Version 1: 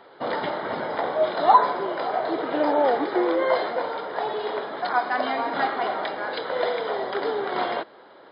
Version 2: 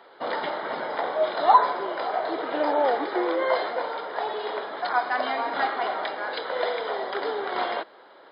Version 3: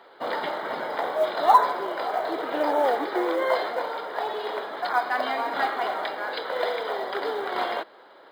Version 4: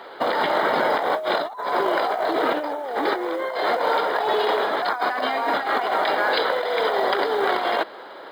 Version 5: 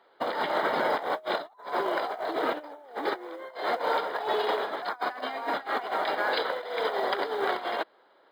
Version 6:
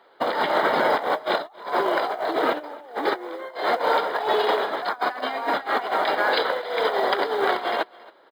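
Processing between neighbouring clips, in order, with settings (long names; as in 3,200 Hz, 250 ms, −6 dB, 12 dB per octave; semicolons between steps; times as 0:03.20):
high-pass filter 450 Hz 6 dB per octave
floating-point word with a short mantissa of 4 bits
compressor whose output falls as the input rises −31 dBFS, ratio −1; level +7.5 dB
expander for the loud parts 2.5 to 1, over −31 dBFS; level −4 dB
single-tap delay 274 ms −22.5 dB; level +6 dB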